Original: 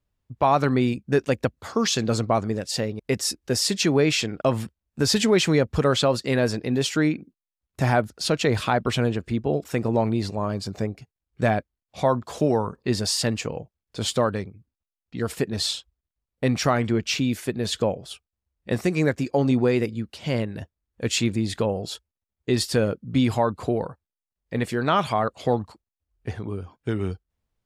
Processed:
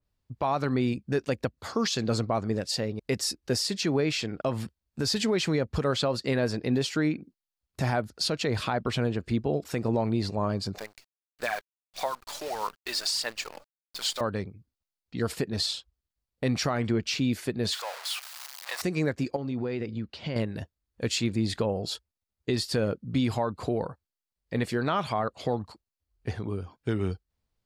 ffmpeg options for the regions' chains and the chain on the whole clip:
-filter_complex "[0:a]asettb=1/sr,asplit=3[a][b][c];[a]atrim=end=10.784[d];[b]atrim=start=10.78:end=14.21,asetpts=PTS-STARTPTS,afade=t=in:d=0.004:c=qsin,afade=t=out:st=3.426:d=0.004:c=qsin,highpass=980,aphaser=in_gain=1:out_gain=1:delay=3.5:decay=0.58:speed=1.6:type=sinusoidal,acrusher=bits=7:dc=4:mix=0:aa=0.000001[e];[c]atrim=start=14.206[f];[d][e]acrossfade=d=0.004:c1=hsin:c2=qsin[g];[g][f]acrossfade=d=0.004:c1=qsin:c2=hsin,asettb=1/sr,asplit=3[h][i][j];[h]atrim=end=17.724[k];[i]atrim=start=17.72:end=18.82,asetpts=PTS-STARTPTS,afade=t=in:d=0.004:c=qsin,afade=t=out:st=1.096:d=0.004:c=qsin,aeval=exprs='val(0)+0.5*0.0447*sgn(val(0))':c=same,highpass=f=850:w=0.5412,highpass=f=850:w=1.3066[l];[j]atrim=start=18.816[m];[k][l]acrossfade=d=0.004:c1=hsin:c2=qsin[n];[n][m]acrossfade=d=0.004:c1=qsin:c2=hsin,asettb=1/sr,asplit=3[o][p][q];[o]atrim=end=19.364[r];[p]atrim=start=19.36:end=20.36,asetpts=PTS-STARTPTS,afade=t=in:d=0.004:c=qsin,afade=t=out:st=0.996:d=0.004:c=qsin,acompressor=threshold=-26dB:ratio=6:attack=3.2:release=140:knee=1:detection=peak,lowpass=3.9k[s];[q]atrim=start=20.356[t];[r][s]acrossfade=d=0.004:c1=hsin:c2=qsin[u];[u][t]acrossfade=d=0.004:c1=qsin:c2=hsin,equalizer=f=4.5k:w=3:g=5.5,alimiter=limit=-15.5dB:level=0:latency=1:release=197,adynamicequalizer=threshold=0.00891:dfrequency=2900:dqfactor=0.7:tfrequency=2900:tqfactor=0.7:attack=5:release=100:ratio=0.375:range=2.5:mode=cutabove:tftype=highshelf,volume=-1.5dB"

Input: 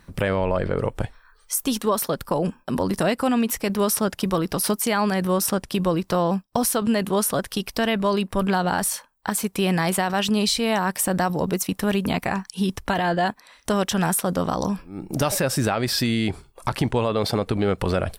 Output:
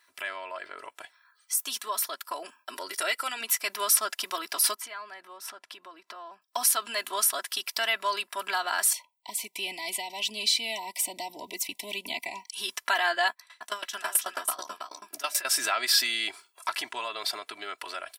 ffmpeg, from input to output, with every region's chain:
-filter_complex "[0:a]asettb=1/sr,asplit=3[a][b][c];[a]atrim=end=2.744[d];[b]atrim=start=2.74:end=3.41,asetpts=PTS-STARTPTS,afade=t=in:d=0.004:c=qsin,afade=t=out:st=0.666:d=0.004:c=qsin,equalizer=f=990:t=o:w=0.24:g=-11,aecho=1:1:2.1:0.55,atrim=end_sample=29547[e];[c]atrim=start=3.406[f];[d][e]acrossfade=d=0.004:c1=hsin:c2=qsin[g];[g][f]acrossfade=d=0.004:c1=qsin:c2=hsin,asettb=1/sr,asplit=3[h][i][j];[h]atrim=end=4.744[k];[i]atrim=start=4.74:end=6.42,asetpts=PTS-STARTPTS,afade=t=in:d=0.004:c=qsin,afade=t=out:st=1.676:d=0.004:c=qsin,lowpass=f=1.6k:p=1,acompressor=threshold=-33dB:ratio=3:attack=3.2:release=140:knee=1:detection=peak[l];[j]atrim=start=6.416[m];[k][l]acrossfade=d=0.004:c1=hsin:c2=qsin[n];[n][m]acrossfade=d=0.004:c1=qsin:c2=hsin,asettb=1/sr,asplit=3[o][p][q];[o]atrim=end=8.934[r];[p]atrim=start=8.93:end=12.53,asetpts=PTS-STARTPTS,afade=t=in:d=0.004:c=qsin,afade=t=out:st=3.596:d=0.004:c=qsin,bass=f=250:g=10,treble=f=4k:g=-8,acrossover=split=330|3000[s][t][u];[t]acompressor=threshold=-41dB:ratio=1.5:attack=3.2:release=140:knee=2.83:detection=peak[v];[s][v][u]amix=inputs=3:normalize=0,asuperstop=centerf=1400:order=20:qfactor=1.5[w];[q]atrim=start=12.526[x];[r][w]acrossfade=d=0.004:c1=hsin:c2=qsin[y];[y][x]acrossfade=d=0.004:c1=qsin:c2=hsin,asettb=1/sr,asplit=3[z][aa][ab];[z]atrim=end=13.284[ac];[aa]atrim=start=13.28:end=15.45,asetpts=PTS-STARTPTS,afade=t=in:d=0.004:c=qsin,afade=t=out:st=2.166:d=0.004:c=qsin,asplit=2[ad][ae];[ae]adelay=14,volume=-12dB[af];[ad][af]amix=inputs=2:normalize=0,atrim=end_sample=95697,aecho=1:1:324:0.562,atrim=end_sample=95697,aeval=exprs='val(0)*pow(10,-21*if(lt(mod(9.2*n/s,1),2*abs(9.2)/1000),1-mod(9.2*n/s,1)/(2*abs(9.2)/1000),(mod(9.2*n/s,1)-2*abs(9.2)/1000)/(1-2*abs(9.2)/1000))/20)':c=same[ag];[ab]atrim=start=15.446[ah];[ac][ag]acrossfade=d=0.004:c1=hsin:c2=qsin[ai];[ai][ah]acrossfade=d=0.004:c1=qsin:c2=hsin,highpass=1.3k,aecho=1:1:3:0.86,dynaudnorm=f=660:g=7:m=9dB,volume=-6.5dB"

